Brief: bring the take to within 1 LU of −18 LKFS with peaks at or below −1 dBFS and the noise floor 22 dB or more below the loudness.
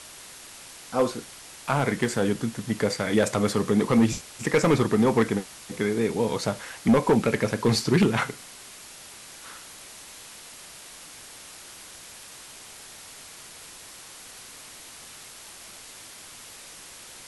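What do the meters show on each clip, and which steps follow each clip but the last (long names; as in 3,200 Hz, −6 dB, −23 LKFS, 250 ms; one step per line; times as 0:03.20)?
share of clipped samples 0.5%; peaks flattened at −13.0 dBFS; background noise floor −45 dBFS; target noise floor −47 dBFS; integrated loudness −24.5 LKFS; sample peak −13.0 dBFS; target loudness −18.0 LKFS
→ clipped peaks rebuilt −13 dBFS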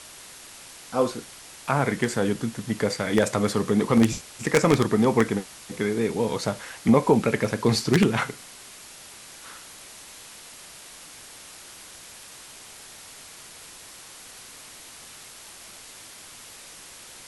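share of clipped samples 0.0%; background noise floor −45 dBFS; target noise floor −46 dBFS
→ noise reduction from a noise print 6 dB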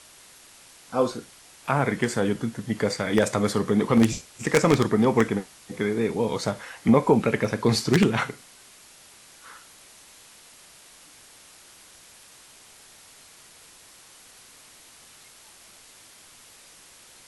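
background noise floor −51 dBFS; integrated loudness −23.5 LKFS; sample peak −4.0 dBFS; target loudness −18.0 LKFS
→ level +5.5 dB
brickwall limiter −1 dBFS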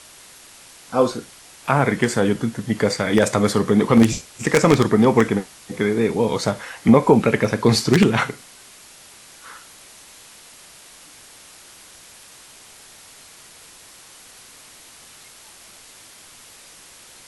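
integrated loudness −18.5 LKFS; sample peak −1.0 dBFS; background noise floor −46 dBFS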